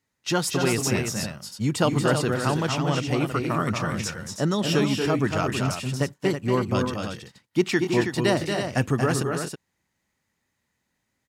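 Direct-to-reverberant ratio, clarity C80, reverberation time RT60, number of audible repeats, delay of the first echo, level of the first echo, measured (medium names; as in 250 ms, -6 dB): no reverb, no reverb, no reverb, 2, 232 ms, -5.5 dB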